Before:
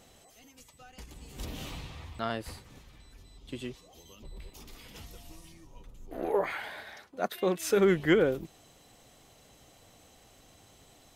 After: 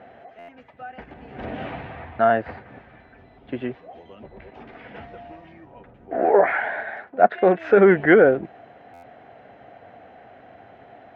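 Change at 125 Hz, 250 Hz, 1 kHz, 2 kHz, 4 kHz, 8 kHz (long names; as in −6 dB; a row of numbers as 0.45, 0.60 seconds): +5.5 dB, +8.5 dB, +15.5 dB, +12.5 dB, can't be measured, below −25 dB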